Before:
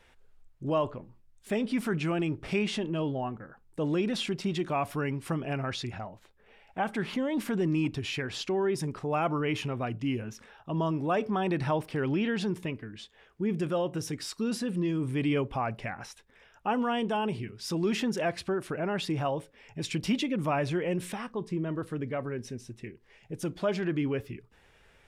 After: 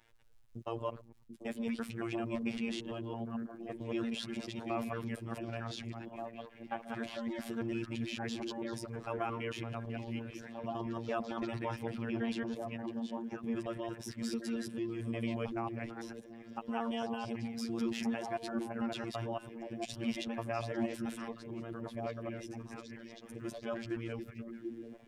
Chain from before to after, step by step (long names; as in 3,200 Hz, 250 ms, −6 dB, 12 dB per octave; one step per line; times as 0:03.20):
reversed piece by piece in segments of 112 ms
surface crackle 250 per second −57 dBFS
phases set to zero 115 Hz
on a send: echo through a band-pass that steps 739 ms, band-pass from 260 Hz, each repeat 1.4 octaves, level −1.5 dB
on the sum: level −6 dB